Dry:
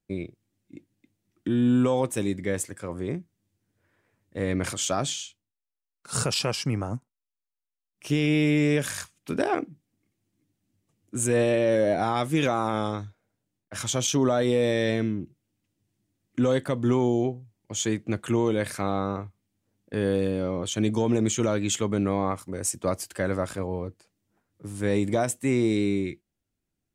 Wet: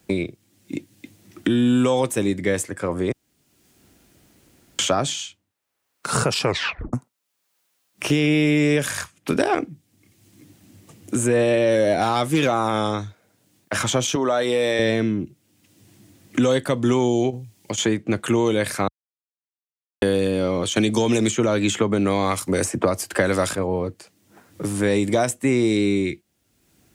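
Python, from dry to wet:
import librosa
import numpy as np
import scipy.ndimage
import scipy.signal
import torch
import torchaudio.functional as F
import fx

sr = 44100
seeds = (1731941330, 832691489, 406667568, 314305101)

y = fx.clip_hard(x, sr, threshold_db=-15.5, at=(11.94, 12.53))
y = fx.highpass(y, sr, hz=660.0, slope=6, at=(14.15, 14.79))
y = fx.over_compress(y, sr, threshold_db=-38.0, ratio=-1.0, at=(17.3, 17.78))
y = fx.band_squash(y, sr, depth_pct=100, at=(20.76, 23.55))
y = fx.edit(y, sr, fx.room_tone_fill(start_s=3.12, length_s=1.67),
    fx.tape_stop(start_s=6.43, length_s=0.5),
    fx.silence(start_s=18.88, length_s=1.14), tone=tone)
y = scipy.signal.sosfilt(scipy.signal.butter(2, 52.0, 'highpass', fs=sr, output='sos'), y)
y = fx.bass_treble(y, sr, bass_db=-3, treble_db=0)
y = fx.band_squash(y, sr, depth_pct=70)
y = y * 10.0 ** (5.5 / 20.0)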